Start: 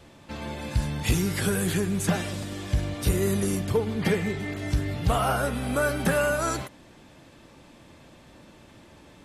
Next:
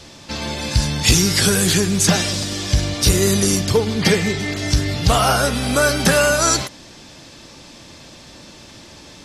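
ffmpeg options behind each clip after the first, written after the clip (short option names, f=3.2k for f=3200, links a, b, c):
-af "equalizer=f=5.3k:w=1:g=14.5,volume=7.5dB"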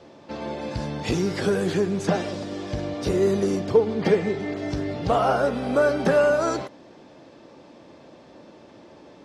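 -af "bandpass=f=480:t=q:w=0.95:csg=0"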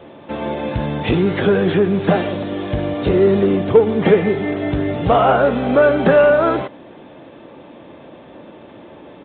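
-filter_complex "[0:a]asplit=2[a][b];[b]asoftclip=type=hard:threshold=-19.5dB,volume=-8.5dB[c];[a][c]amix=inputs=2:normalize=0,aresample=8000,aresample=44100,volume=5.5dB"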